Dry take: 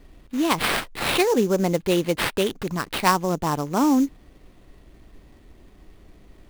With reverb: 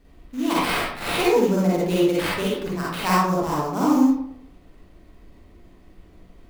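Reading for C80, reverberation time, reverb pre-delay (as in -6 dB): 3.5 dB, 0.65 s, 40 ms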